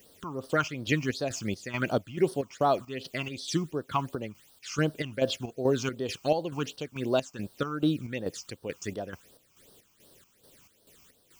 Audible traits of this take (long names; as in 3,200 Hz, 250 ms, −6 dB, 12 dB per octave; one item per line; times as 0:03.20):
a quantiser's noise floor 10 bits, dither triangular
phaser sweep stages 8, 2.7 Hz, lowest notch 500–2,300 Hz
chopped level 2.3 Hz, depth 60%, duty 55%